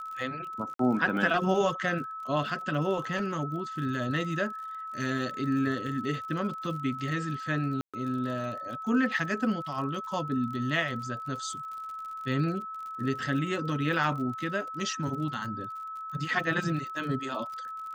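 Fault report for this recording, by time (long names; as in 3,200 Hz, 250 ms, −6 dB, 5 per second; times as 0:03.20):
surface crackle 51 per second −39 dBFS
whistle 1,300 Hz −36 dBFS
0:00.74–0:00.79: drop-out 53 ms
0:07.81–0:07.94: drop-out 126 ms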